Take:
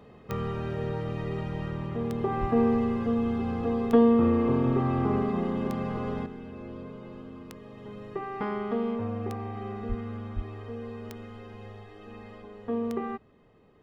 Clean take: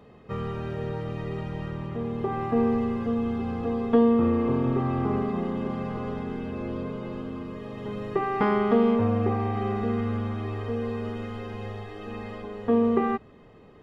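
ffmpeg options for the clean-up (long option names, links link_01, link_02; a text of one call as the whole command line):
ffmpeg -i in.wav -filter_complex "[0:a]adeclick=threshold=4,asplit=3[link_01][link_02][link_03];[link_01]afade=type=out:start_time=2.4:duration=0.02[link_04];[link_02]highpass=frequency=140:width=0.5412,highpass=frequency=140:width=1.3066,afade=type=in:start_time=2.4:duration=0.02,afade=type=out:start_time=2.52:duration=0.02[link_05];[link_03]afade=type=in:start_time=2.52:duration=0.02[link_06];[link_04][link_05][link_06]amix=inputs=3:normalize=0,asplit=3[link_07][link_08][link_09];[link_07]afade=type=out:start_time=9.88:duration=0.02[link_10];[link_08]highpass=frequency=140:width=0.5412,highpass=frequency=140:width=1.3066,afade=type=in:start_time=9.88:duration=0.02,afade=type=out:start_time=10:duration=0.02[link_11];[link_09]afade=type=in:start_time=10:duration=0.02[link_12];[link_10][link_11][link_12]amix=inputs=3:normalize=0,asplit=3[link_13][link_14][link_15];[link_13]afade=type=out:start_time=10.35:duration=0.02[link_16];[link_14]highpass=frequency=140:width=0.5412,highpass=frequency=140:width=1.3066,afade=type=in:start_time=10.35:duration=0.02,afade=type=out:start_time=10.47:duration=0.02[link_17];[link_15]afade=type=in:start_time=10.47:duration=0.02[link_18];[link_16][link_17][link_18]amix=inputs=3:normalize=0,asetnsamples=nb_out_samples=441:pad=0,asendcmd='6.26 volume volume 8.5dB',volume=0dB" out.wav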